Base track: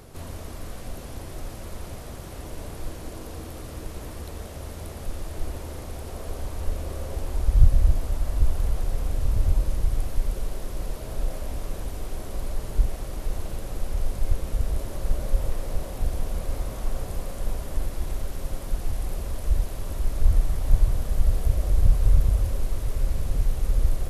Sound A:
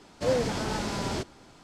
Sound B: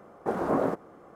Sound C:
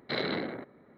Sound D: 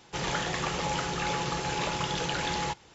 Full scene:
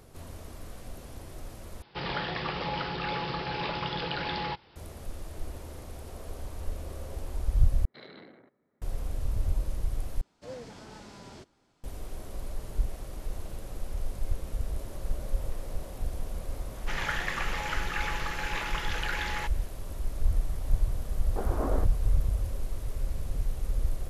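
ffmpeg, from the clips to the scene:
ffmpeg -i bed.wav -i cue0.wav -i cue1.wav -i cue2.wav -i cue3.wav -filter_complex "[4:a]asplit=2[link_01][link_02];[0:a]volume=-7dB[link_03];[link_01]aresample=11025,aresample=44100[link_04];[link_02]equalizer=frequency=1800:width=0.88:gain=14.5[link_05];[link_03]asplit=4[link_06][link_07][link_08][link_09];[link_06]atrim=end=1.824[link_10];[link_04]atrim=end=2.94,asetpts=PTS-STARTPTS,volume=-2dB[link_11];[link_07]atrim=start=4.756:end=7.854[link_12];[3:a]atrim=end=0.97,asetpts=PTS-STARTPTS,volume=-17.5dB[link_13];[link_08]atrim=start=8.816:end=10.214[link_14];[1:a]atrim=end=1.63,asetpts=PTS-STARTPTS,volume=-16.5dB[link_15];[link_09]atrim=start=11.836[link_16];[link_05]atrim=end=2.94,asetpts=PTS-STARTPTS,volume=-10.5dB,afade=type=in:duration=0.004:curve=hsin,afade=type=out:start_time=2.936:duration=0.004:curve=hsin,adelay=16740[link_17];[2:a]atrim=end=1.15,asetpts=PTS-STARTPTS,volume=-7dB,afade=type=in:duration=0.004:curve=hsin,afade=type=out:start_time=1.146:duration=0.004:curve=hsin,adelay=21100[link_18];[link_10][link_11]acrossfade=duration=0.004:curve1=hsin:curve2=hsin[link_19];[link_19][link_12]acrossfade=duration=0.004:curve1=hsin:curve2=hsin[link_20];[link_20][link_13]acrossfade=duration=0.004:curve1=hsin:curve2=hsin[link_21];[link_21][link_14]acrossfade=duration=0.004:curve1=hsin:curve2=hsin[link_22];[link_22][link_15]acrossfade=duration=0.004:curve1=hsin:curve2=hsin[link_23];[link_23][link_16]acrossfade=duration=0.004:curve1=hsin:curve2=hsin[link_24];[link_24][link_17][link_18]amix=inputs=3:normalize=0" out.wav

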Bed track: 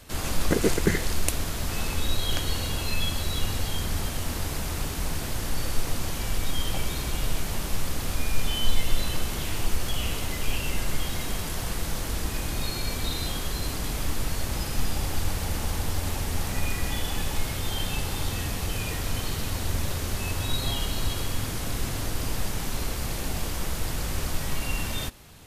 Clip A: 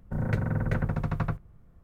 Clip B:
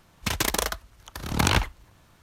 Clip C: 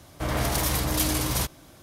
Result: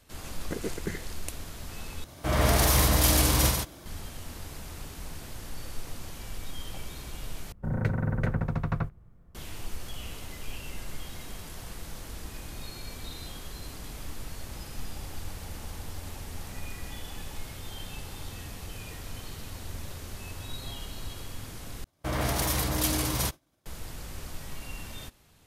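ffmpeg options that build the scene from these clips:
ffmpeg -i bed.wav -i cue0.wav -i cue1.wav -i cue2.wav -filter_complex "[3:a]asplit=2[link_01][link_02];[0:a]volume=-11dB[link_03];[link_01]aecho=1:1:43.73|139.9:0.708|0.631[link_04];[link_02]agate=range=-33dB:threshold=-39dB:ratio=3:release=100:detection=peak[link_05];[link_03]asplit=4[link_06][link_07][link_08][link_09];[link_06]atrim=end=2.044[link_10];[link_04]atrim=end=1.82[link_11];[link_07]atrim=start=3.856:end=7.524[link_12];[1:a]atrim=end=1.83,asetpts=PTS-STARTPTS,volume=-0.5dB[link_13];[link_08]atrim=start=9.346:end=21.844[link_14];[link_05]atrim=end=1.82,asetpts=PTS-STARTPTS,volume=-2.5dB[link_15];[link_09]atrim=start=23.656[link_16];[link_10][link_11]acrossfade=duration=0.004:curve1=hsin:curve2=hsin[link_17];[link_17][link_12]acrossfade=duration=0.004:curve1=hsin:curve2=hsin[link_18];[link_18][link_13]acrossfade=duration=0.004:curve1=hsin:curve2=hsin[link_19];[link_19][link_14]acrossfade=duration=0.004:curve1=hsin:curve2=hsin[link_20];[link_20][link_15]acrossfade=duration=0.004:curve1=hsin:curve2=hsin[link_21];[link_21][link_16]acrossfade=duration=0.004:curve1=hsin:curve2=hsin" out.wav

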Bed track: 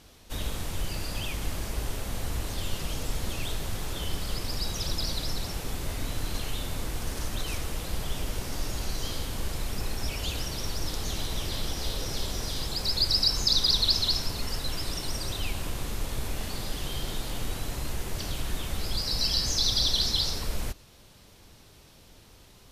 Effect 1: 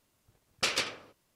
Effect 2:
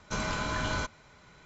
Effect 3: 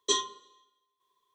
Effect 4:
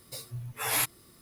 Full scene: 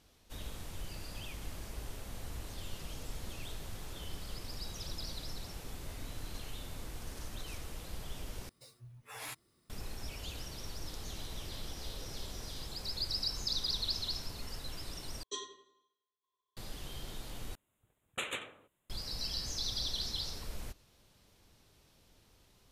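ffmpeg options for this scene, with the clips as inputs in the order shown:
ffmpeg -i bed.wav -i cue0.wav -i cue1.wav -i cue2.wav -i cue3.wav -filter_complex "[0:a]volume=-11.5dB[link_01];[4:a]equalizer=frequency=13000:width_type=o:width=0.55:gain=-10[link_02];[3:a]asplit=2[link_03][link_04];[link_04]adelay=89,lowpass=frequency=2600:poles=1,volume=-7dB,asplit=2[link_05][link_06];[link_06]adelay=89,lowpass=frequency=2600:poles=1,volume=0.46,asplit=2[link_07][link_08];[link_08]adelay=89,lowpass=frequency=2600:poles=1,volume=0.46,asplit=2[link_09][link_10];[link_10]adelay=89,lowpass=frequency=2600:poles=1,volume=0.46,asplit=2[link_11][link_12];[link_12]adelay=89,lowpass=frequency=2600:poles=1,volume=0.46[link_13];[link_03][link_05][link_07][link_09][link_11][link_13]amix=inputs=6:normalize=0[link_14];[1:a]asuperstop=centerf=5100:order=8:qfactor=1.7[link_15];[link_01]asplit=4[link_16][link_17][link_18][link_19];[link_16]atrim=end=8.494[link_20];[link_02]atrim=end=1.21,asetpts=PTS-STARTPTS,volume=-14.5dB[link_21];[link_17]atrim=start=9.696:end=15.234[link_22];[link_14]atrim=end=1.34,asetpts=PTS-STARTPTS,volume=-14.5dB[link_23];[link_18]atrim=start=16.566:end=17.554[link_24];[link_15]atrim=end=1.35,asetpts=PTS-STARTPTS,volume=-7dB[link_25];[link_19]atrim=start=18.896[link_26];[link_20][link_21]acrossfade=duration=0.004:curve1=hsin:curve2=hsin[link_27];[link_27][link_22]acrossfade=duration=0.004:curve1=hsin:curve2=hsin[link_28];[link_28][link_23]acrossfade=duration=0.004:curve1=hsin:curve2=hsin[link_29];[link_29][link_24]acrossfade=duration=0.004:curve1=hsin:curve2=hsin[link_30];[link_30][link_25]acrossfade=duration=0.004:curve1=hsin:curve2=hsin[link_31];[link_31][link_26]acrossfade=duration=0.004:curve1=hsin:curve2=hsin" out.wav

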